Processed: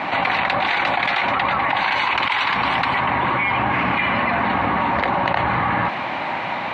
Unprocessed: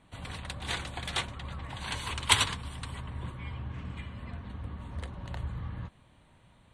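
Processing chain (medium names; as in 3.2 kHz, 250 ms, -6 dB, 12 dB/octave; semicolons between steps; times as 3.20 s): bit crusher 12-bit; cabinet simulation 390–3600 Hz, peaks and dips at 450 Hz -8 dB, 810 Hz +7 dB, 2.2 kHz +5 dB, 3.3 kHz -8 dB; level flattener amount 100%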